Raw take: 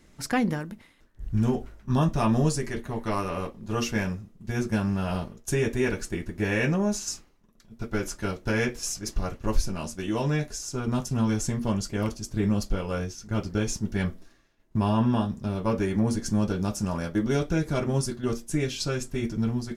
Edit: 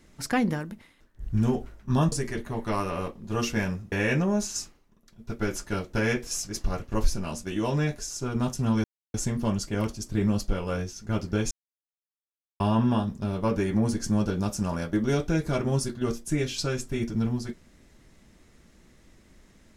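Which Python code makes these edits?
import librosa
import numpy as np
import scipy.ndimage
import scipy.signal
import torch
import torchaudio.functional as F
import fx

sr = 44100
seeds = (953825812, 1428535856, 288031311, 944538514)

y = fx.edit(x, sr, fx.cut(start_s=2.12, length_s=0.39),
    fx.cut(start_s=4.31, length_s=2.13),
    fx.insert_silence(at_s=11.36, length_s=0.3),
    fx.silence(start_s=13.73, length_s=1.09), tone=tone)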